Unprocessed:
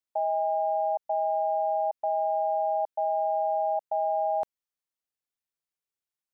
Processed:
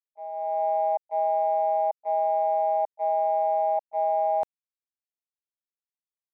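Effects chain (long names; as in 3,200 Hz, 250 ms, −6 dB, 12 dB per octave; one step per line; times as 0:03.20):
noise gate −24 dBFS, range −42 dB
automatic gain control gain up to 14 dB
level +1.5 dB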